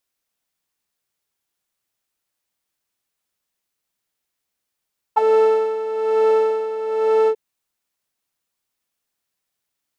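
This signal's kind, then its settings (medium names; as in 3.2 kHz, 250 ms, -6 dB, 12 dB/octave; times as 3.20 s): synth patch with tremolo A4, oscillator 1 saw, interval +19 st, sub -26 dB, noise -17 dB, filter bandpass, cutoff 470 Hz, Q 9.7, filter envelope 1 oct, filter decay 0.06 s, filter sustain 25%, attack 16 ms, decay 1.23 s, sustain -1.5 dB, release 0.07 s, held 2.12 s, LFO 1.1 Hz, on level 10.5 dB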